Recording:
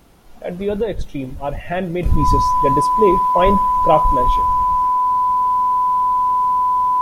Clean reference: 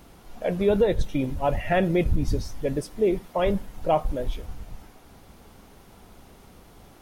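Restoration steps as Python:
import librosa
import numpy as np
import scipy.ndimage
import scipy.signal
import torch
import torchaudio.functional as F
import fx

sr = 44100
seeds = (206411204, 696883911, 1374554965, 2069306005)

y = fx.notch(x, sr, hz=1000.0, q=30.0)
y = fx.gain(y, sr, db=fx.steps((0.0, 0.0), (2.03, -7.5)))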